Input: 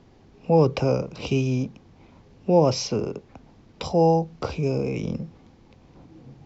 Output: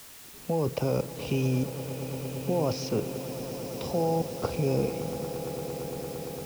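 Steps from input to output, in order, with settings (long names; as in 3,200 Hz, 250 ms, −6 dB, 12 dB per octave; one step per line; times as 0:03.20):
output level in coarse steps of 13 dB
bit-depth reduction 8 bits, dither triangular
echo that builds up and dies away 114 ms, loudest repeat 8, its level −16.5 dB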